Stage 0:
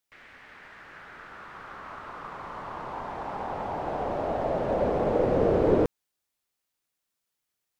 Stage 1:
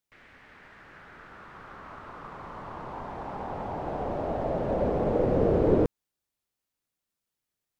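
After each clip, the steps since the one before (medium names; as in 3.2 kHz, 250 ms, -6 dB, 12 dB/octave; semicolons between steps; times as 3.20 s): bass shelf 420 Hz +7.5 dB; trim -4.5 dB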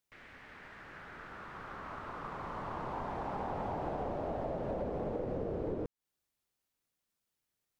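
compression 16:1, threshold -33 dBFS, peak gain reduction 17 dB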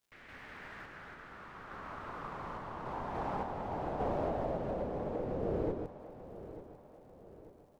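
crackle 160 per s -64 dBFS; random-step tremolo 3.5 Hz; feedback delay 892 ms, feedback 45%, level -14 dB; trim +3.5 dB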